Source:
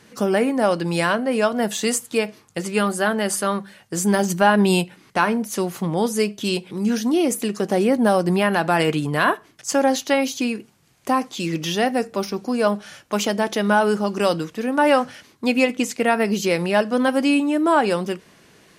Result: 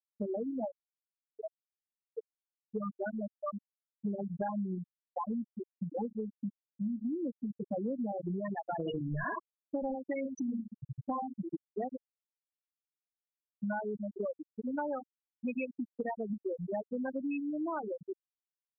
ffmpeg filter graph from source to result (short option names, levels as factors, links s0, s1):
-filter_complex "[0:a]asettb=1/sr,asplit=3[s0][s1][s2];[s0]atrim=end=0.684[s3];[s1]atrim=start=0.68:end=2.63,asetpts=PTS-STARTPTS,afade=t=in:d=0.004:c=qsin,afade=t=out:st=1.946:d=0.004:c=qsin,aeval=exprs='(tanh(11.2*val(0)+0.6)-tanh(0.6))/11.2':c=same,aeval=exprs='sgn(val(0))*max(abs(val(0))-0.0075,0)':c=same[s4];[s2]atrim=start=2.626[s5];[s3][s4]acrossfade=d=0.004:c1=hsin:c2=qsin[s6];[s6][s5]acrossfade=d=0.004:c1=qsin:c2=hsin,asettb=1/sr,asplit=3[s7][s8][s9];[s7]atrim=end=4.484[s10];[s8]atrim=start=4.48:end=8.12,asetpts=PTS-STARTPTS,afade=t=in:d=0.004:c=qsin,afade=t=out:st=3.636:d=0.004:c=qsin,lowpass=1000,aecho=1:1:3.8:0.49,atrim=end_sample=160524[s11];[s9]atrim=start=8.116[s12];[s10][s11]acrossfade=d=0.004:c1=hsin:c2=qsin[s13];[s13][s12]acrossfade=d=0.004:c1=qsin:c2=hsin,asettb=1/sr,asplit=3[s14][s15][s16];[s14]atrim=end=8.794[s17];[s15]atrim=start=8.79:end=11.42,asetpts=PTS-STARTPTS,afade=t=in:d=0.004:c=qsin,afade=t=out:st=2.626:d=0.004:c=qsin,aeval=exprs='val(0)+0.5*0.1*sgn(val(0))':c=same,aecho=1:1:60|66|74|75|83:0.158|0.355|0.335|0.398|0.335,atrim=end_sample=115983[s18];[s16]atrim=start=11.416[s19];[s17][s18]acrossfade=d=0.004:c1=hsin:c2=qsin[s20];[s20][s19]acrossfade=d=0.004:c1=qsin:c2=hsin,asettb=1/sr,asplit=3[s21][s22][s23];[s21]atrim=end=11.964[s24];[s22]atrim=start=11.96:end=13.63,asetpts=PTS-STARTPTS,afade=t=in:d=0.004:c=qsin,afade=t=out:st=1.666:d=0.004:c=qsin,aecho=1:1:2.6:0.51,atrim=end_sample=73647,acompressor=threshold=0.0282:ratio=2.5:attack=3.2:release=140:knee=1:detection=peak[s25];[s23]atrim=start=13.626[s26];[s24][s25]acrossfade=d=0.004:c1=hsin:c2=qsin[s27];[s27][s26]acrossfade=d=0.004:c1=qsin:c2=hsin,afftfilt=real='re*gte(hypot(re,im),0.631)':imag='im*gte(hypot(re,im),0.631)':win_size=1024:overlap=0.75,adynamicequalizer=threshold=0.0282:dfrequency=600:dqfactor=0.71:tfrequency=600:tqfactor=0.71:attack=5:release=100:ratio=0.375:range=2:mode=cutabove:tftype=bell,acompressor=threshold=0.0501:ratio=6,volume=0.447"